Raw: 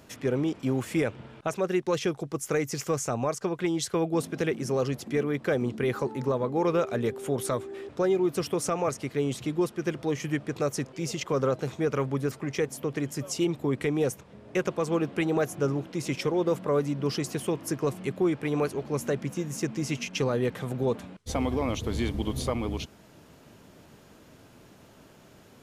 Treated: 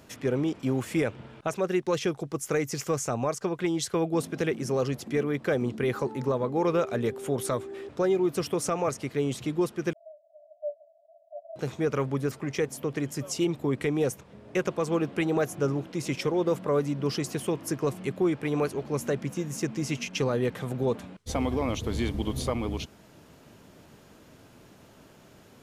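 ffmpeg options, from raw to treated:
-filter_complex "[0:a]asettb=1/sr,asplit=3[a][b][c];[a]atrim=end=9.934[d];[b]atrim=start=9.93:end=11.56,asetpts=PTS-STARTPTS,afade=t=in:d=0.004:c=qsin,afade=t=out:st=1.626:d=0.004:c=qsin,asuperpass=centerf=640:order=20:qfactor=5.1[e];[c]atrim=start=11.556[f];[d][e]acrossfade=d=0.004:c1=hsin:c2=qsin[g];[g][f]acrossfade=d=0.004:c1=qsin:c2=hsin"

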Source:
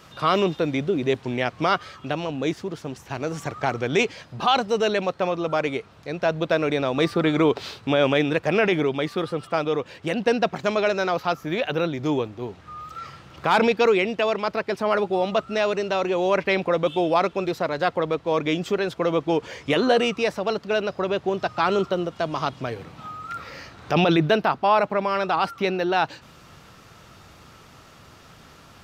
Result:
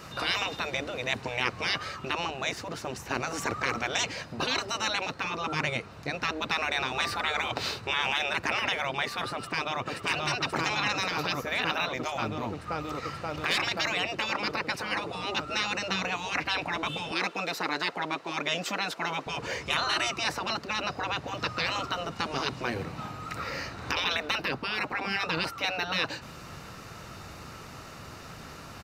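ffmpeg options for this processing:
-filter_complex "[0:a]asplit=2[a][b];[b]afade=t=in:st=9.34:d=0.01,afade=t=out:st=9.82:d=0.01,aecho=0:1:530|1060|1590|2120|2650|3180|3710|4240|4770|5300|5830|6360:0.707946|0.566357|0.453085|0.362468|0.289975|0.23198|0.185584|0.148467|0.118774|0.0950189|0.0760151|0.0608121[c];[a][c]amix=inputs=2:normalize=0,asettb=1/sr,asplit=3[d][e][f];[d]atrim=end=17.114[g];[e]atrim=start=17.11:end=19.27,asetpts=PTS-STARTPTS,afade=t=in:d=0.004:c=qsin,afade=t=out:st=2.156:d=0.004:c=qsin,highpass=400[h];[f]atrim=start=19.266[i];[g][h]acrossfade=d=0.004:c1=hsin:c2=qsin[j];[j][i]acrossfade=d=0.004:c1=qsin:c2=hsin,bandreject=f=3.3k:w=8.6,afftfilt=real='re*lt(hypot(re,im),0.141)':imag='im*lt(hypot(re,im),0.141)':win_size=1024:overlap=0.75,volume=4.5dB"

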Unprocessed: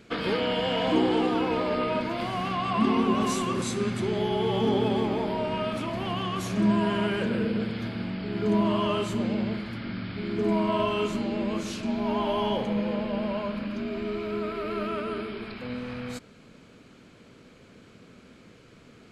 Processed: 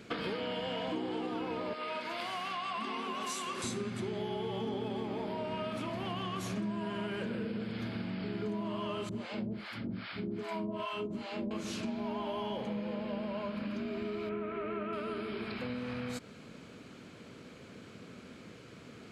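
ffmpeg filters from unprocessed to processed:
-filter_complex "[0:a]asettb=1/sr,asplit=3[a][b][c];[a]atrim=end=1.734[d];[b]atrim=start=1.73:end=3.64,asetpts=PTS-STARTPTS,afade=t=in:d=0.004:c=qsin,afade=t=out:st=1.906:d=0.004:c=qsin,highpass=f=1.3k:p=1[e];[c]atrim=start=3.636[f];[d][e]acrossfade=d=0.004:c1=hsin:c2=qsin[g];[g][f]acrossfade=d=0.004:c1=qsin:c2=hsin,asettb=1/sr,asplit=3[h][i][j];[h]atrim=end=9.094[k];[i]atrim=start=9.09:end=11.51,asetpts=PTS-STARTPTS,afade=t=in:d=0.004:c=qsin,afade=t=out:st=2.416:d=0.004:c=qsin,acrossover=split=640[l][m];[l]aeval=exprs='val(0)*(1-1/2+1/2*cos(2*PI*2.5*n/s))':c=same[n];[m]aeval=exprs='val(0)*(1-1/2-1/2*cos(2*PI*2.5*n/s))':c=same[o];[n][o]amix=inputs=2:normalize=0[p];[j]atrim=start=11.506[q];[k][p]acrossfade=d=0.004:c1=hsin:c2=qsin[r];[r][q]acrossfade=d=0.004:c1=qsin:c2=hsin,asettb=1/sr,asplit=3[s][t][u];[s]atrim=end=14.294[v];[t]atrim=start=14.29:end=14.93,asetpts=PTS-STARTPTS,afade=t=in:d=0.004:c=qsin,afade=t=out:st=0.636:d=0.004:c=qsin,lowpass=f=2.7k:w=0.5412,lowpass=f=2.7k:w=1.3066[w];[u]atrim=start=14.926[x];[v][w]acrossfade=d=0.004:c1=hsin:c2=qsin[y];[y][x]acrossfade=d=0.004:c1=qsin:c2=hsin,highpass=72,acompressor=threshold=-36dB:ratio=6,volume=1.5dB"

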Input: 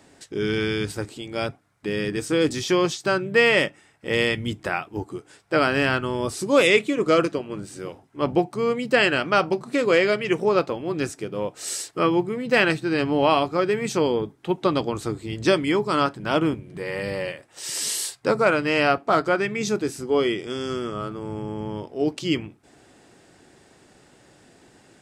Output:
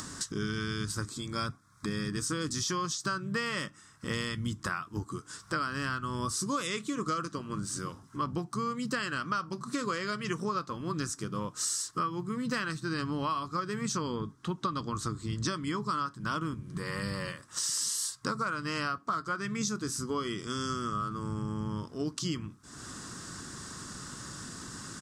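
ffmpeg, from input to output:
-filter_complex "[0:a]asettb=1/sr,asplit=3[a][b][c];[a]atrim=end=1.104[d];[b]atrim=start=1.1:end=2.12,asetpts=PTS-STARTPTS,afade=t=in:d=0.004:c=qsin,afade=t=out:st=1.016:d=0.004:c=qsin,asuperstop=centerf=2900:order=20:qfactor=7.8[e];[c]atrim=start=2.116[f];[d][e]acrossfade=d=0.004:c1=hsin:c2=qsin[g];[g][f]acrossfade=d=0.004:c1=qsin:c2=hsin,asettb=1/sr,asplit=3[h][i][j];[h]atrim=end=13.814[k];[i]atrim=start=13.81:end=16.07,asetpts=PTS-STARTPTS,afade=t=in:d=0.004:c=qsin,afade=t=out:st=2.256:d=0.004:c=qsin,highshelf=f=11k:g=-11[l];[j]atrim=start=16.066[m];[k][l]acrossfade=d=0.004:c1=hsin:c2=qsin[n];[n][m]acrossfade=d=0.004:c1=qsin:c2=hsin,acompressor=mode=upward:threshold=-30dB:ratio=2.5,firequalizer=gain_entry='entry(200,0);entry(380,-11);entry(780,-16);entry(1100,6);entry(2300,-12);entry(3500,-3);entry(5700,6);entry(13000,-2)':delay=0.05:min_phase=1,acompressor=threshold=-30dB:ratio=10,volume=1dB"

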